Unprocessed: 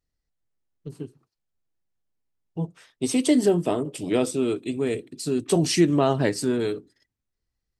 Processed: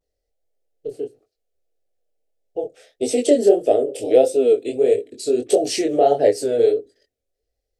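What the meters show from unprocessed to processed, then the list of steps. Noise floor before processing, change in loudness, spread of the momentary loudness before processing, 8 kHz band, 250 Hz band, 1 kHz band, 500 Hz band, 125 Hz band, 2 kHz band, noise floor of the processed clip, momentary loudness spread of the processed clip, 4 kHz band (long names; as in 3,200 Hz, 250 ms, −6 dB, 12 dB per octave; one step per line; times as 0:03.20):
−83 dBFS, +6.0 dB, 19 LU, +1.0 dB, −2.0 dB, +6.5 dB, +9.5 dB, below −10 dB, −3.0 dB, −80 dBFS, 17 LU, 0.0 dB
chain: flat-topped bell 600 Hz +15.5 dB 1.2 octaves
in parallel at +1 dB: downward compressor, threshold −19 dBFS, peak gain reduction 14 dB
on the sum: phaser with its sweep stopped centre 400 Hz, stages 4
pitch vibrato 0.53 Hz 48 cents
chorus effect 1.6 Hz, delay 19 ms, depth 7 ms
level −1 dB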